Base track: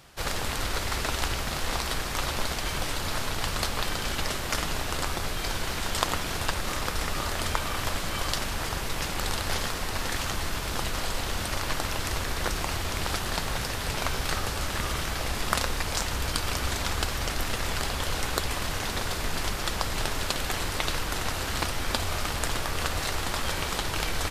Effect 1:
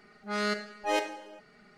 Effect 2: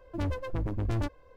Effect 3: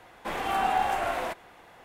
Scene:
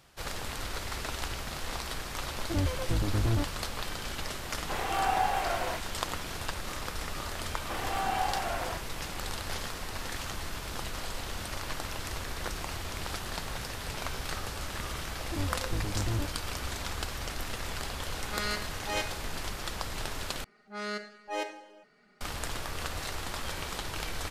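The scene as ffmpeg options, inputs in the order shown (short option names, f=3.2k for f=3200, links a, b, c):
-filter_complex "[2:a]asplit=2[a][b];[3:a]asplit=2[c][d];[1:a]asplit=2[e][f];[0:a]volume=-7dB[g];[a]tiltshelf=f=970:g=5[h];[c]highpass=260[i];[b]tiltshelf=f=970:g=5[j];[e]tiltshelf=f=1.4k:g=-5.5[k];[f]equalizer=f=70:t=o:w=1.5:g=-10.5[l];[g]asplit=2[m][n];[m]atrim=end=20.444[o];[l]atrim=end=1.77,asetpts=PTS-STARTPTS,volume=-5.5dB[p];[n]atrim=start=22.206[q];[h]atrim=end=1.36,asetpts=PTS-STARTPTS,volume=-2.5dB,afade=t=in:d=0.004:c=hsin,afade=t=out:st=1.356:d=0.004:c=hsin,adelay=2360[r];[i]atrim=end=1.84,asetpts=PTS-STARTPTS,volume=-2.5dB,afade=t=in:d=0.004:c=hsin,afade=t=out:st=1.836:d=0.004:c=hsin,adelay=4440[s];[d]atrim=end=1.84,asetpts=PTS-STARTPTS,volume=-5.5dB,afade=t=in:d=0.004:c=hsin,afade=t=out:st=1.836:d=0.004:c=hsin,adelay=7440[t];[j]atrim=end=1.36,asetpts=PTS-STARTPTS,volume=-6.5dB,afade=t=in:d=0.004:c=hsin,afade=t=out:st=1.356:d=0.004:c=hsin,adelay=15180[u];[k]atrim=end=1.77,asetpts=PTS-STARTPTS,volume=-3.5dB,afade=t=in:d=0.004:c=hsin,afade=t=out:st=1.766:d=0.004:c=hsin,adelay=18020[v];[o][p]acrossfade=d=0.004:c1=hsin:c2=hsin[w];[w][q]acrossfade=d=0.004:c1=hsin:c2=hsin[x];[x][r][s][t][u][v]amix=inputs=6:normalize=0"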